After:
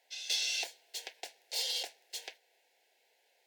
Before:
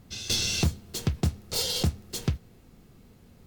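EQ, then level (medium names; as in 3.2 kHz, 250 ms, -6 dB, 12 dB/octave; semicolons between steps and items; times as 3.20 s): Bessel high-pass 950 Hz, order 6; Butterworth band-stop 1.2 kHz, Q 1.4; treble shelf 4.9 kHz -11 dB; 0.0 dB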